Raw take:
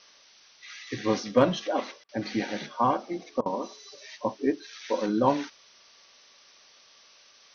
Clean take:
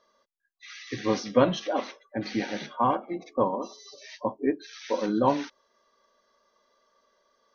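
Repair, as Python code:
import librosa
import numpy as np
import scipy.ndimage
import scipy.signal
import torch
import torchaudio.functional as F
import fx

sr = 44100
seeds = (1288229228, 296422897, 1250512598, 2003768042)

y = fx.fix_declip(x, sr, threshold_db=-10.0)
y = fx.fix_interpolate(y, sr, at_s=(2.04, 3.41), length_ms=47.0)
y = fx.noise_reduce(y, sr, print_start_s=0.11, print_end_s=0.61, reduce_db=12.0)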